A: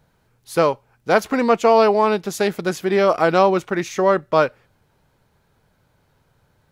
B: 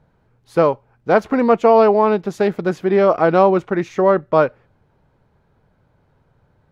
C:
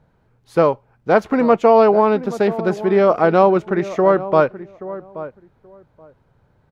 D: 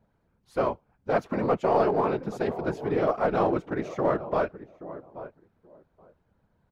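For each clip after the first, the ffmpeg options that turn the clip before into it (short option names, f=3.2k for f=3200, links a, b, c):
-af "lowpass=f=1.1k:p=1,volume=3.5dB"
-filter_complex "[0:a]asplit=2[a][b];[b]adelay=828,lowpass=f=1.1k:p=1,volume=-14dB,asplit=2[c][d];[d]adelay=828,lowpass=f=1.1k:p=1,volume=0.18[e];[a][c][e]amix=inputs=3:normalize=0"
-filter_complex "[0:a]afftfilt=real='hypot(re,im)*cos(2*PI*random(0))':imag='hypot(re,im)*sin(2*PI*random(1))':win_size=512:overlap=0.75,asplit=2[a][b];[b]aeval=exprs='clip(val(0),-1,0.106)':c=same,volume=-7dB[c];[a][c]amix=inputs=2:normalize=0,volume=-7.5dB"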